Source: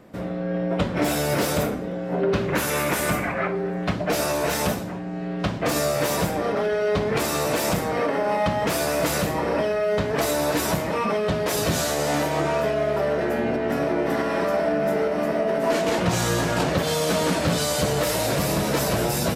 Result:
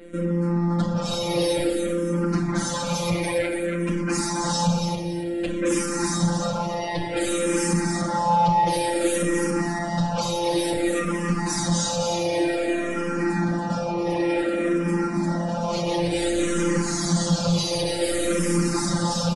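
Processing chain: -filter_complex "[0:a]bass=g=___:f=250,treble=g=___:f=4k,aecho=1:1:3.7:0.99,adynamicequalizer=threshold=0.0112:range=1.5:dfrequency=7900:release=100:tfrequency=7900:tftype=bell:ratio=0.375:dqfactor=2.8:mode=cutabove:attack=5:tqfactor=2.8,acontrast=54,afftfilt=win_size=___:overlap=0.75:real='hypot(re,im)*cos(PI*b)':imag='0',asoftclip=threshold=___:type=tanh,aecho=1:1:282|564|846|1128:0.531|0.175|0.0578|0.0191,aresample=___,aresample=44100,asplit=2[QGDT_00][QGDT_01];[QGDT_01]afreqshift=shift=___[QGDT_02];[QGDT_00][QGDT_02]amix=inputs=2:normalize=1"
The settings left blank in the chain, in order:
10, 6, 1024, -11.5dB, 22050, -0.55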